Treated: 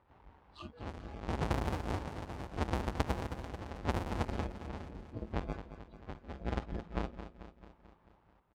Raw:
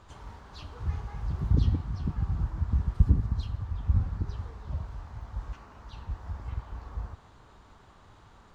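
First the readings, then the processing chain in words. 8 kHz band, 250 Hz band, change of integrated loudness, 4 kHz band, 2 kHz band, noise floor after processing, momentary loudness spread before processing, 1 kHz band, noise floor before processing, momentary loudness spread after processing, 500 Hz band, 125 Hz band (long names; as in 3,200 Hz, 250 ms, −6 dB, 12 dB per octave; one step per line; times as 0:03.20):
can't be measured, −1.5 dB, −8.0 dB, +2.5 dB, +7.0 dB, −68 dBFS, 19 LU, +6.0 dB, −56 dBFS, 16 LU, +9.0 dB, −11.0 dB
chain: each half-wave held at its own peak
high-pass filter 680 Hz 6 dB per octave
noise reduction from a noise print of the clip's start 19 dB
low-pass that shuts in the quiet parts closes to 2,800 Hz, open at −30.5 dBFS
spectral tilt −3 dB per octave
downward compressor 16 to 1, threshold −33 dBFS, peak gain reduction 18 dB
square-wave tremolo 0.78 Hz, depth 65%, duty 55%
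parametric band 860 Hz +4.5 dB 0.51 octaves
on a send: repeating echo 220 ms, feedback 58%, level −11 dB
on the sum: level +4 dB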